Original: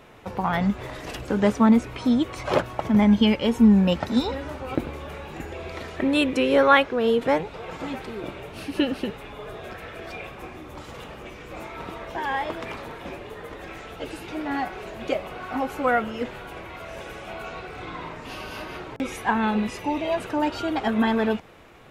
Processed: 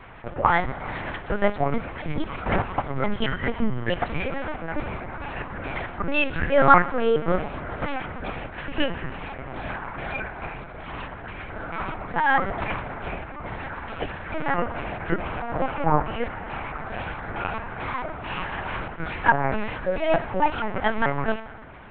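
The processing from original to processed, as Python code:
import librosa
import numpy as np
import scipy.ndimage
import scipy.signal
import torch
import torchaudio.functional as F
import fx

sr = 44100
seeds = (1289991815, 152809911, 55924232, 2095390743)

p1 = fx.pitch_trill(x, sr, semitones=-8.0, every_ms=217)
p2 = fx.rider(p1, sr, range_db=5, speed_s=0.5)
p3 = p1 + (p2 * 10.0 ** (-1.5 / 20.0))
p4 = fx.bandpass_q(p3, sr, hz=2000.0, q=0.52)
p5 = fx.air_absorb(p4, sr, metres=390.0)
p6 = p5 + fx.echo_single(p5, sr, ms=71, db=-20.0, dry=0)
p7 = fx.rev_schroeder(p6, sr, rt60_s=2.8, comb_ms=33, drr_db=14.5)
p8 = fx.lpc_vocoder(p7, sr, seeds[0], excitation='pitch_kept', order=8)
y = p8 * 10.0 ** (4.5 / 20.0)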